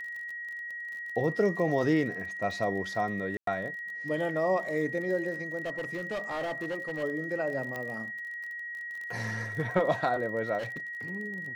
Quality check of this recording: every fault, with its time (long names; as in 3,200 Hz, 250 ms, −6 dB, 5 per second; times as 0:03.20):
surface crackle 37 per second −38 dBFS
whistle 1,900 Hz −36 dBFS
0:03.37–0:03.47: drop-out 103 ms
0:05.65–0:07.04: clipping −29.5 dBFS
0:07.76: click −22 dBFS
0:10.58–0:10.88: clipping −32.5 dBFS